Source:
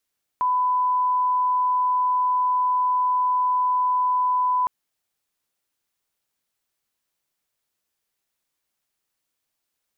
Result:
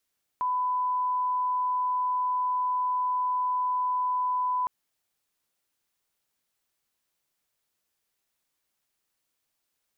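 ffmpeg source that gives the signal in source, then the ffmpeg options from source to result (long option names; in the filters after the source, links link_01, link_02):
-f lavfi -i "sine=frequency=1000:duration=4.26:sample_rate=44100,volume=0.06dB"
-af "alimiter=limit=-24dB:level=0:latency=1:release=41"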